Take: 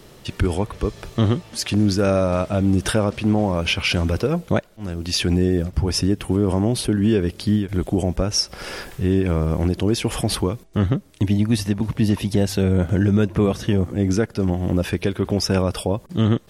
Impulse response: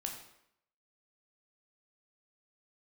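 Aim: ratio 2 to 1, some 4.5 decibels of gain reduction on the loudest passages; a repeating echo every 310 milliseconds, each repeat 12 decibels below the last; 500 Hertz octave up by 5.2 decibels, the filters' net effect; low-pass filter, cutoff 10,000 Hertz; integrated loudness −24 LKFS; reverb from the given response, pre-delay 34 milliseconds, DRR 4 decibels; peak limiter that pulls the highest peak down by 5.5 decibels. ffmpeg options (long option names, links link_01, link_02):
-filter_complex "[0:a]lowpass=10000,equalizer=frequency=500:width_type=o:gain=6.5,acompressor=threshold=-19dB:ratio=2,alimiter=limit=-12.5dB:level=0:latency=1,aecho=1:1:310|620|930:0.251|0.0628|0.0157,asplit=2[link_01][link_02];[1:a]atrim=start_sample=2205,adelay=34[link_03];[link_02][link_03]afir=irnorm=-1:irlink=0,volume=-3.5dB[link_04];[link_01][link_04]amix=inputs=2:normalize=0,volume=-1.5dB"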